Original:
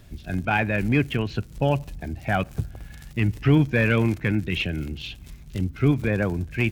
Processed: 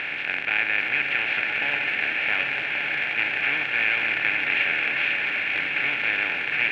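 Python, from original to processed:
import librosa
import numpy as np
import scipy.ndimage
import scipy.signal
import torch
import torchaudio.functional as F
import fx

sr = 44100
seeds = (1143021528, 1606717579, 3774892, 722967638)

y = fx.bin_compress(x, sr, power=0.2)
y = fx.bandpass_q(y, sr, hz=2200.0, q=3.9)
y = fx.rev_bloom(y, sr, seeds[0], attack_ms=1090, drr_db=2.5)
y = F.gain(torch.from_numpy(y), 1.5).numpy()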